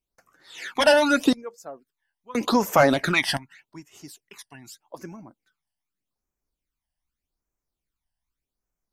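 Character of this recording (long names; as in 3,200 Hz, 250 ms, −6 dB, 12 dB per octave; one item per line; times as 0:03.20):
phaser sweep stages 12, 0.83 Hz, lowest notch 390–4,000 Hz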